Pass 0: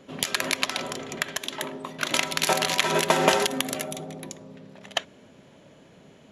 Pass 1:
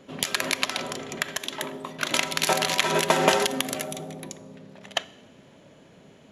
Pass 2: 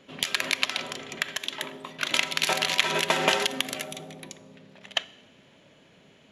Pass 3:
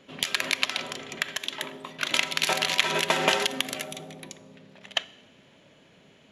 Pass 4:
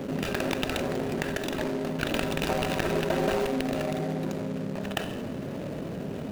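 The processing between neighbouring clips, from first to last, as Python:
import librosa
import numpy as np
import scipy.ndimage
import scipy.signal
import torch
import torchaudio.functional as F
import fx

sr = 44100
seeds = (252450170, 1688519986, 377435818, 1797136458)

y1 = fx.rev_schroeder(x, sr, rt60_s=1.0, comb_ms=29, drr_db=19.5)
y2 = fx.peak_eq(y1, sr, hz=2800.0, db=8.0, octaves=1.8)
y2 = y2 * 10.0 ** (-6.0 / 20.0)
y3 = y2
y4 = scipy.ndimage.median_filter(y3, 41, mode='constant')
y4 = fx.env_flatten(y4, sr, amount_pct=70)
y4 = y4 * 10.0 ** (2.0 / 20.0)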